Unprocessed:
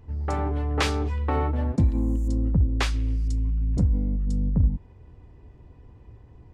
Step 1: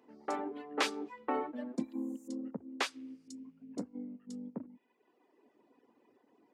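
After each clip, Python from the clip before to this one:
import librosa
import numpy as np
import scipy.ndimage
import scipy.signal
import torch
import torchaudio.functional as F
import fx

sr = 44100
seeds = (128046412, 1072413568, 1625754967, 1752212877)

y = fx.dereverb_blind(x, sr, rt60_s=1.3)
y = scipy.signal.sosfilt(scipy.signal.cheby1(4, 1.0, 240.0, 'highpass', fs=sr, output='sos'), y)
y = y * 10.0 ** (-5.0 / 20.0)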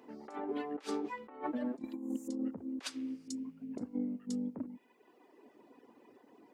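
y = fx.over_compress(x, sr, threshold_db=-41.0, ratio=-0.5)
y = y * 10.0 ** (4.0 / 20.0)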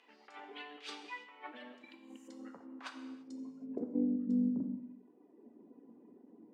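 y = fx.filter_sweep_bandpass(x, sr, from_hz=2900.0, to_hz=220.0, start_s=1.78, end_s=4.48, q=1.8)
y = fx.rev_gated(y, sr, seeds[0], gate_ms=360, shape='falling', drr_db=5.5)
y = y * 10.0 ** (6.5 / 20.0)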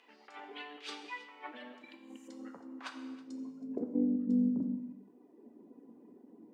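y = x + 10.0 ** (-20.0 / 20.0) * np.pad(x, (int(321 * sr / 1000.0), 0))[:len(x)]
y = y * 10.0 ** (2.0 / 20.0)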